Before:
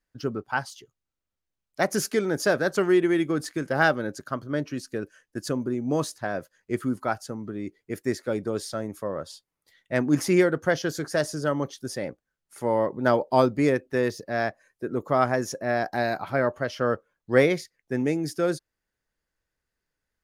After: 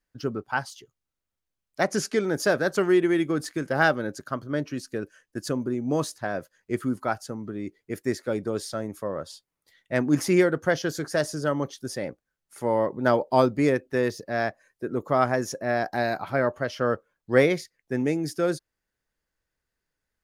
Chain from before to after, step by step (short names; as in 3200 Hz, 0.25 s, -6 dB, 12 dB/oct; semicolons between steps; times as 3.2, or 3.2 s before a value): 1.83–2.24 LPF 8100 Hz 12 dB/oct